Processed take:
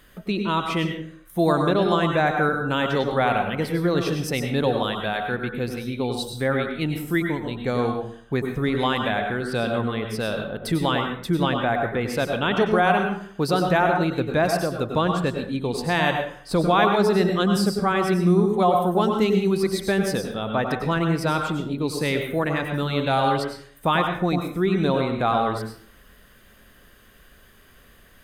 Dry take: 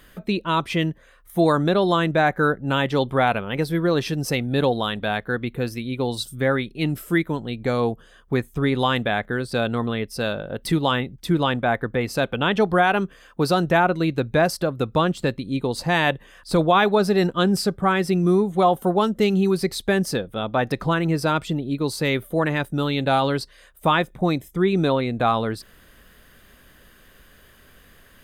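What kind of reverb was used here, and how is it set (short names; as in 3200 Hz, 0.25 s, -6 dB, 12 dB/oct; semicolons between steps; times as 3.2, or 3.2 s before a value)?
plate-style reverb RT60 0.54 s, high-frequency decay 0.65×, pre-delay 85 ms, DRR 3.5 dB; gain -2.5 dB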